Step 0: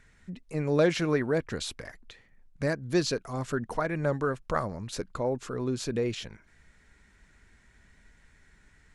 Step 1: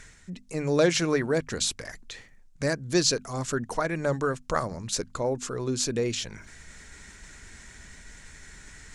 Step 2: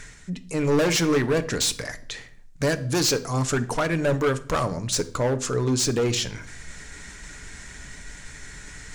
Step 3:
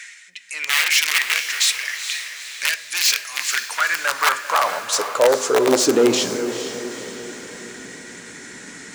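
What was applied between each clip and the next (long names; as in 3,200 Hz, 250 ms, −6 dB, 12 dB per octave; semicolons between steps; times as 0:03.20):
parametric band 6,900 Hz +11 dB 1.4 octaves; mains-hum notches 50/100/150/200/250 Hz; reversed playback; upward compression, threshold −37 dBFS; reversed playback; level +1.5 dB
gain into a clipping stage and back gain 25 dB; convolution reverb RT60 0.60 s, pre-delay 7 ms, DRR 10 dB; level +6 dB
wrap-around overflow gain 16 dB; high-pass filter sweep 2,200 Hz → 240 Hz, 0:03.36–0:06.29; feedback delay with all-pass diffusion 452 ms, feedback 50%, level −9.5 dB; level +4 dB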